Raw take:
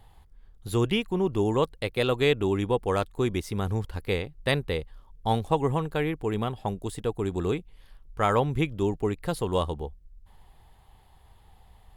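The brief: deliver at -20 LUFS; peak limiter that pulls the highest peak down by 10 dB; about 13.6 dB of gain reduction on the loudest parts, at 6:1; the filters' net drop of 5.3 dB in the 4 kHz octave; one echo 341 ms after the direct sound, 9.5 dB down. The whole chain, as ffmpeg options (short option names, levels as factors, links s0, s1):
-af "equalizer=f=4000:t=o:g=-7,acompressor=threshold=0.02:ratio=6,alimiter=level_in=2.37:limit=0.0631:level=0:latency=1,volume=0.422,aecho=1:1:341:0.335,volume=13.3"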